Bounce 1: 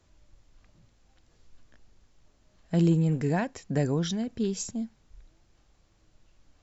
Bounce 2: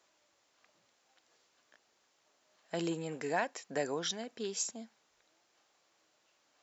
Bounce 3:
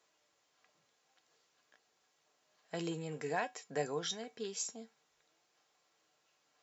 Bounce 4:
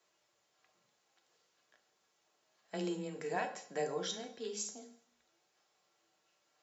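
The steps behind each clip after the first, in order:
HPF 550 Hz 12 dB/oct
resonator 150 Hz, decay 0.16 s, harmonics odd, mix 70%; gain +4.5 dB
frequency shift +13 Hz; on a send at -6 dB: reverb RT60 0.60 s, pre-delay 3 ms; on the sum: gain -2 dB

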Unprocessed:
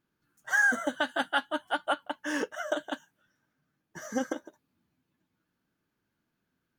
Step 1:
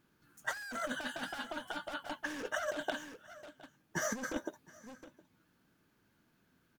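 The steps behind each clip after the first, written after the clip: hard clip -33 dBFS, distortion -4 dB; echo 0.714 s -23 dB; negative-ratio compressor -40 dBFS, ratio -0.5; gain +3.5 dB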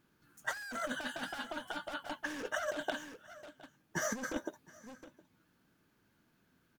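nothing audible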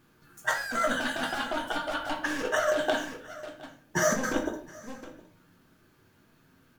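shoebox room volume 55 m³, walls mixed, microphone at 0.55 m; gain +7.5 dB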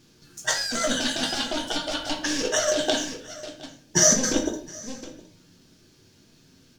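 EQ curve 410 Hz 0 dB, 1300 Hz -10 dB, 5500 Hz +12 dB, 13000 Hz -5 dB; gain +5.5 dB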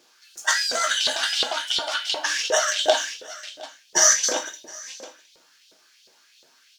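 LFO high-pass saw up 2.8 Hz 500–3900 Hz; gain +1.5 dB

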